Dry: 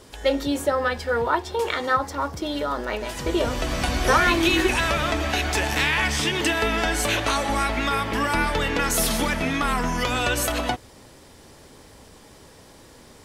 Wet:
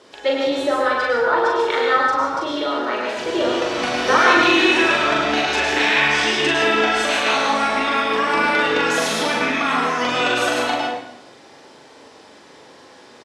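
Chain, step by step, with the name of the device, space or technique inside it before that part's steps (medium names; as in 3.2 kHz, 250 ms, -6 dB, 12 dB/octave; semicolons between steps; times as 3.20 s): supermarket ceiling speaker (band-pass 300–5100 Hz; reverberation RT60 0.85 s, pre-delay 97 ms, DRR 0 dB); doubling 41 ms -2.5 dB; trim +1 dB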